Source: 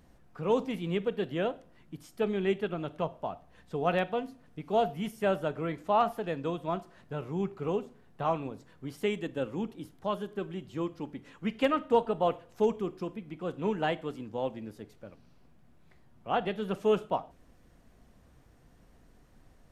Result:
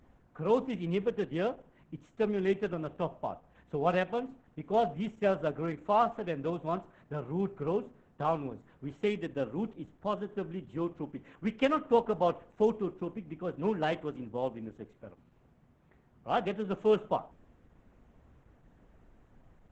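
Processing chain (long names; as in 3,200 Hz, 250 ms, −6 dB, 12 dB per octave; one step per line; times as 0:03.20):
adaptive Wiener filter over 9 samples
Opus 10 kbit/s 48,000 Hz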